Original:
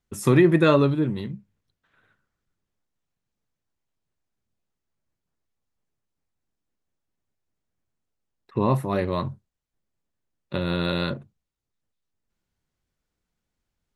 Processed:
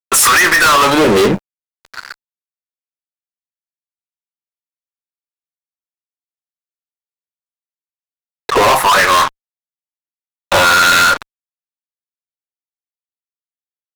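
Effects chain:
auto-filter high-pass sine 0.57 Hz 470–1,500 Hz
downward compressor 6 to 1, threshold −30 dBFS, peak gain reduction 14.5 dB
fuzz pedal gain 47 dB, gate −56 dBFS
level +5 dB

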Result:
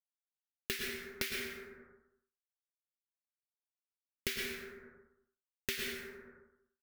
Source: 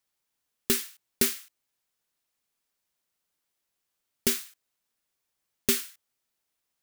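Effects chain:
wavefolder on the positive side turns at −13.5 dBFS
automatic gain control gain up to 12.5 dB
bit reduction 7 bits
leveller curve on the samples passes 1
octave-band graphic EQ 125/250/1,000/2,000/8,000 Hz −6/−12/−11/+7/−9 dB
single-tap delay 92 ms −16 dB
dense smooth reverb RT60 0.78 s, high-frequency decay 0.4×, pre-delay 95 ms, DRR 0 dB
downward compressor 4 to 1, threshold −45 dBFS, peak gain reduction 27 dB
high-shelf EQ 11,000 Hz −11.5 dB
level +7 dB

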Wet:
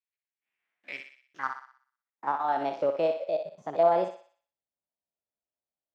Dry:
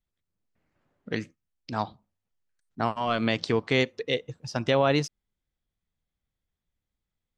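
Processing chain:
spectrum averaged block by block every 50 ms
in parallel at −6 dB: log-companded quantiser 4 bits
on the sum: band-pass filter sweep 1,800 Hz → 510 Hz, 0:00.99–0:03.46
change of speed 1.24×
feedback echo with a high-pass in the loop 61 ms, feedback 48%, high-pass 590 Hz, level −6 dB

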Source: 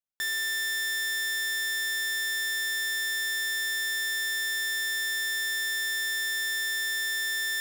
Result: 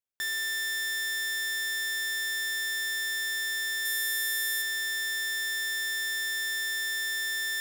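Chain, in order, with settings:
0:03.85–0:04.62: parametric band 13,000 Hz +9.5 dB 0.79 octaves
level −1.5 dB

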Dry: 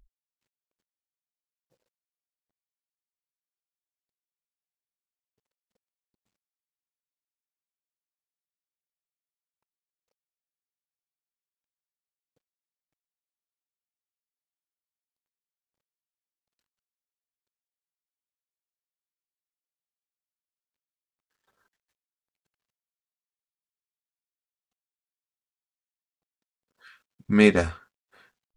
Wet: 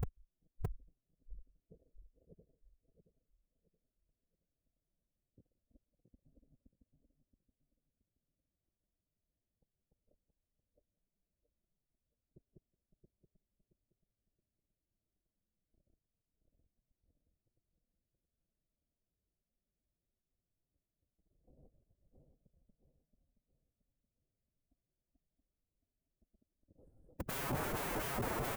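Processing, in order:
feedback delay that plays each chunk backwards 337 ms, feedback 60%, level 0 dB
elliptic band-stop filter 640–8,700 Hz, stop band 40 dB
in parallel at −9 dB: soft clipping −22 dBFS, distortion −7 dB
on the sum: downward compressor 12 to 1, threshold −27 dBFS, peak gain reduction 15.5 dB
spectral tilt −4.5 dB per octave
on a send: single-tap delay 172 ms −23.5 dB
on the sum: treble cut that deepens with the level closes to 310 Hz, closed at −37.5 dBFS
wrap-around overflow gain 31.5 dB
phase-vocoder pitch shift with formants kept +4.5 semitones
parametric band 4,100 Hz −15 dB 2.6 octaves
level +3 dB

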